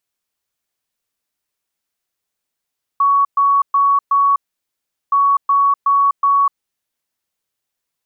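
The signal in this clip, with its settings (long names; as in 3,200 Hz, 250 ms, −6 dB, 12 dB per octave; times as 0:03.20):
beeps in groups sine 1,120 Hz, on 0.25 s, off 0.12 s, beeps 4, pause 0.76 s, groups 2, −10 dBFS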